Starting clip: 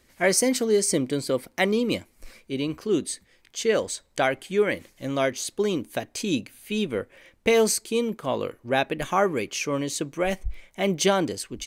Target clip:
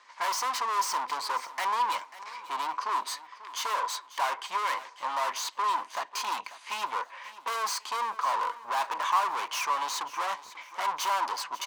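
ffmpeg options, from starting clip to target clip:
ffmpeg -i in.wav -filter_complex "[0:a]lowpass=frequency=6300:width=0.5412,lowpass=frequency=6300:width=1.3066,aeval=exprs='(tanh(79.4*val(0)+0.65)-tanh(0.65))/79.4':channel_layout=same,highpass=frequency=1000:width_type=q:width=11,asplit=2[link_01][link_02];[link_02]aecho=0:1:542|1084|1626:0.15|0.0554|0.0205[link_03];[link_01][link_03]amix=inputs=2:normalize=0,volume=7dB" out.wav

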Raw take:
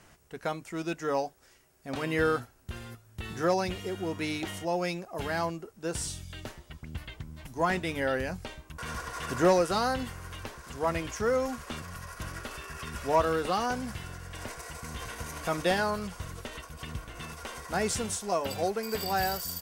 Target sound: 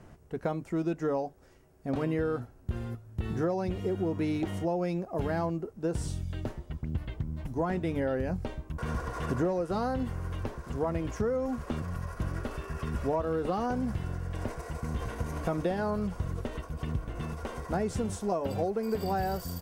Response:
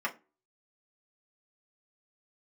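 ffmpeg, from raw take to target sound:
-af "tiltshelf=frequency=1100:gain=9,acompressor=threshold=-26dB:ratio=10"

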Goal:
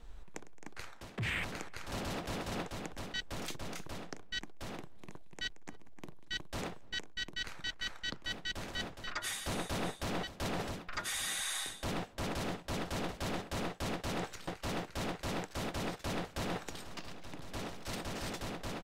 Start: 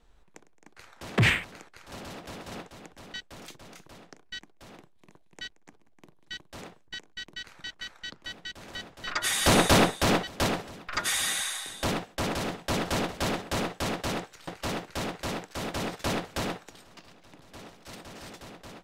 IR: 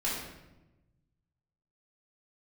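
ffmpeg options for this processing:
-filter_complex "[0:a]lowshelf=frequency=74:gain=9,areverse,acompressor=threshold=-39dB:ratio=12,areverse,asplit=2[link_01][link_02];[link_02]adelay=288,lowpass=frequency=1200:poles=1,volume=-23dB,asplit=2[link_03][link_04];[link_04]adelay=288,lowpass=frequency=1200:poles=1,volume=0.2[link_05];[link_01][link_03][link_05]amix=inputs=3:normalize=0,volume=4.5dB"

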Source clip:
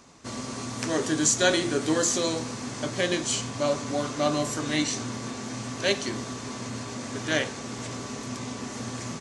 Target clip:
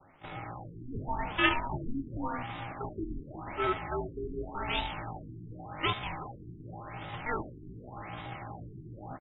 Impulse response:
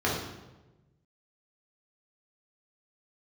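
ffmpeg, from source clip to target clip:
-filter_complex "[0:a]bandreject=frequency=60:width_type=h:width=6,bandreject=frequency=120:width_type=h:width=6,bandreject=frequency=180:width_type=h:width=6,bandreject=frequency=240:width_type=h:width=6,bandreject=frequency=300:width_type=h:width=6,bandreject=frequency=360:width_type=h:width=6,bandreject=frequency=420:width_type=h:width=6,bandreject=frequency=480:width_type=h:width=6,adynamicequalizer=threshold=0.00562:dfrequency=1700:dqfactor=1.6:tfrequency=1700:tqfactor=1.6:attack=5:release=100:ratio=0.375:range=3.5:mode=boostabove:tftype=bell,areverse,acompressor=mode=upward:threshold=-42dB:ratio=2.5,areverse,afreqshift=-27,aeval=exprs='val(0)*sin(2*PI*300*n/s)':channel_layout=same,asetrate=68011,aresample=44100,atempo=0.64842,asplit=2[link_01][link_02];[link_02]aecho=0:1:359:0.211[link_03];[link_01][link_03]amix=inputs=2:normalize=0,afftfilt=real='re*lt(b*sr/1024,390*pow(3900/390,0.5+0.5*sin(2*PI*0.88*pts/sr)))':imag='im*lt(b*sr/1024,390*pow(3900/390,0.5+0.5*sin(2*PI*0.88*pts/sr)))':win_size=1024:overlap=0.75,volume=-2dB"

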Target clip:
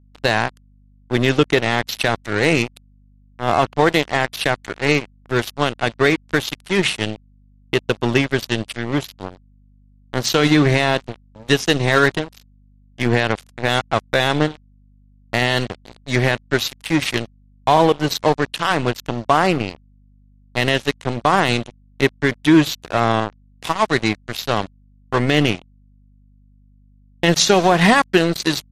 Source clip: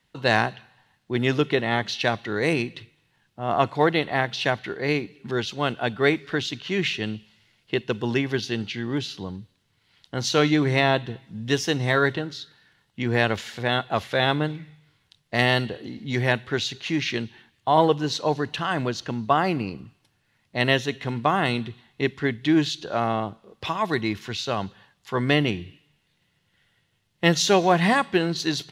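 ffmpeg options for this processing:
ffmpeg -i in.wav -af "aeval=exprs='sgn(val(0))*max(abs(val(0))-0.0335,0)':channel_layout=same,aeval=exprs='val(0)+0.000891*(sin(2*PI*50*n/s)+sin(2*PI*2*50*n/s)/2+sin(2*PI*3*50*n/s)/3+sin(2*PI*4*50*n/s)/4+sin(2*PI*5*50*n/s)/5)':channel_layout=same,alimiter=level_in=12dB:limit=-1dB:release=50:level=0:latency=1,volume=-1dB" -ar 48000 -c:a libmp3lame -b:a 56k out.mp3

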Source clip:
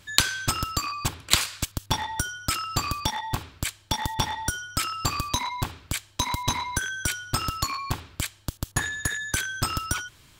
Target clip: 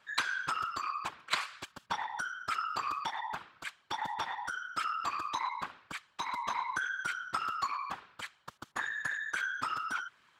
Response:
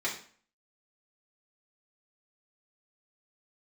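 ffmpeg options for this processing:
-af "afftfilt=real='hypot(re,im)*cos(2*PI*random(0))':imag='hypot(re,im)*sin(2*PI*random(1))':win_size=512:overlap=0.75,bandpass=frequency=1300:width_type=q:width=1.3:csg=0,volume=3.5dB"

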